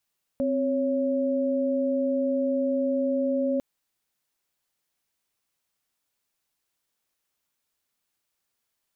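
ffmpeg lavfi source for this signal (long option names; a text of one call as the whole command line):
ffmpeg -f lavfi -i "aevalsrc='0.0562*(sin(2*PI*261.63*t)+sin(2*PI*554.37*t))':duration=3.2:sample_rate=44100" out.wav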